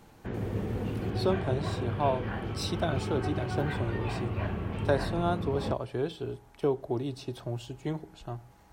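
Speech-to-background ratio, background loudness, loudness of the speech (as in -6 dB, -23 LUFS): 0.5 dB, -34.0 LUFS, -33.5 LUFS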